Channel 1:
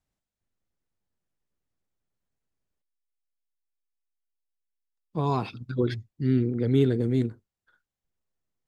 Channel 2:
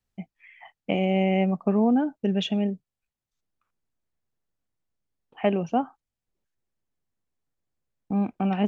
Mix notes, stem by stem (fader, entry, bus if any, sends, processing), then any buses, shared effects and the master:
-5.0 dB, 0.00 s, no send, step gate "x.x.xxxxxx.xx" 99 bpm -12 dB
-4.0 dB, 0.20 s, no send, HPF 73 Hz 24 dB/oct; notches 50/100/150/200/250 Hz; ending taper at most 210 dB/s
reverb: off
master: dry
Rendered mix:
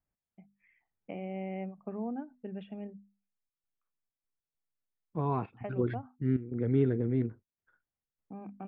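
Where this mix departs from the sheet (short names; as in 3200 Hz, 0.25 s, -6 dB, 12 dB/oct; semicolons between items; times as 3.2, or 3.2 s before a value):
stem 2 -4.0 dB -> -15.0 dB; master: extra LPF 2300 Hz 24 dB/oct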